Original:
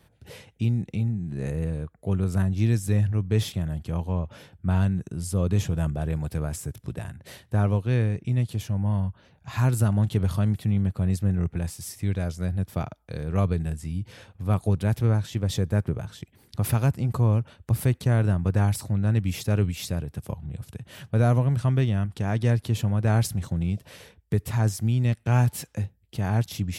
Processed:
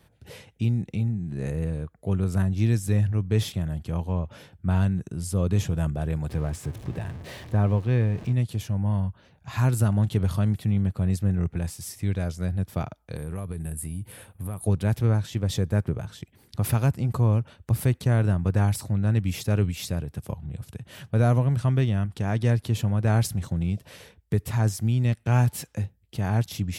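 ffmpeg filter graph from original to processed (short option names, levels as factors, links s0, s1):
-filter_complex "[0:a]asettb=1/sr,asplit=3[s0][s1][s2];[s0]atrim=end=6.294[s3];[s1]atrim=start=6.29:end=8.33,asetpts=PTS-STARTPTS,afade=t=in:d=0.004:c=qsin,afade=t=out:st=2.036:d=0.004:c=qsin,aeval=exprs='val(0)+0.5*0.0158*sgn(val(0))':c=same,lowpass=f=2900:p=1,bandreject=f=1400:w=12[s4];[s2]atrim=start=8.326[s5];[s3][s4]acrossfade=d=0.004:c1=hsin:c2=qsin[s6];[s6][s5]acrossfade=d=0.004:c1=qsin:c2=hsin,asettb=1/sr,asplit=3[s7][s8][s9];[s7]atrim=end=13.164[s10];[s8]atrim=start=13.16:end=14.65,asetpts=PTS-STARTPTS,afade=t=in:d=0.004:c=qsin,afade=t=out:st=1.486:d=0.004:c=qsin,highshelf=f=7700:t=q:w=3:g=11,acompressor=threshold=0.0398:ratio=6:attack=3.2:release=140:knee=1:detection=peak[s11];[s9]atrim=start=14.646[s12];[s10][s11]acrossfade=d=0.004:c1=hsin:c2=qsin[s13];[s13][s12]acrossfade=d=0.004:c1=qsin:c2=hsin"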